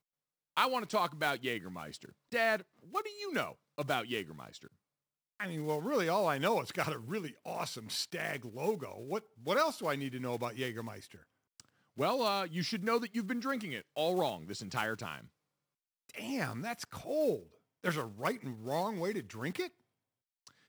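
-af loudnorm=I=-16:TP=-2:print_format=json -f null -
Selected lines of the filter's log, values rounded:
"input_i" : "-36.0",
"input_tp" : "-13.8",
"input_lra" : "3.6",
"input_thresh" : "-46.5",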